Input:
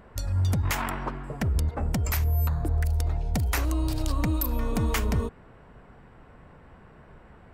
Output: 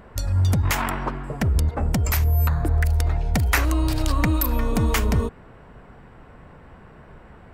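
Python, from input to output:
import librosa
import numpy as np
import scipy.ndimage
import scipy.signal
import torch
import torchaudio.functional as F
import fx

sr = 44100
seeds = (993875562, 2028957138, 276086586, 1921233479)

y = fx.peak_eq(x, sr, hz=1800.0, db=6.0, octaves=1.4, at=(2.4, 4.61))
y = F.gain(torch.from_numpy(y), 5.0).numpy()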